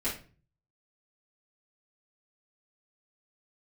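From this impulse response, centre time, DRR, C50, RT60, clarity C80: 28 ms, -11.0 dB, 7.0 dB, 0.40 s, 13.5 dB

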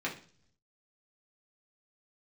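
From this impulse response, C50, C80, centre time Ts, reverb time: 10.5 dB, 15.5 dB, 18 ms, not exponential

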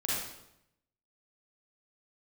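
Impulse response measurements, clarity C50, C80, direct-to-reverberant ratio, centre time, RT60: -3.0 dB, 1.5 dB, -7.0 dB, 79 ms, 0.80 s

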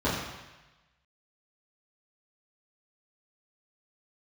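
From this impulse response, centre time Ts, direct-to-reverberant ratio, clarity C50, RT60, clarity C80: 65 ms, -11.0 dB, 2.0 dB, 1.1 s, 4.0 dB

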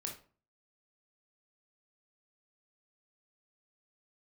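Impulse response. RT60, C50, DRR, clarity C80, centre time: 0.40 s, 7.5 dB, 0.5 dB, 14.0 dB, 21 ms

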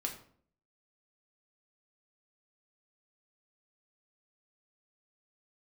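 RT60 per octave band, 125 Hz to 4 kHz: 0.65, 0.70, 0.60, 0.50, 0.45, 0.35 s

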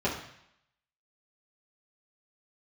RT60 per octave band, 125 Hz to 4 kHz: 0.75, 0.65, 0.65, 0.80, 0.80, 0.80 s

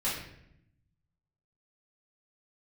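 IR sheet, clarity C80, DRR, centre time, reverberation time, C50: 6.5 dB, -9.0 dB, 49 ms, 0.75 s, 3.0 dB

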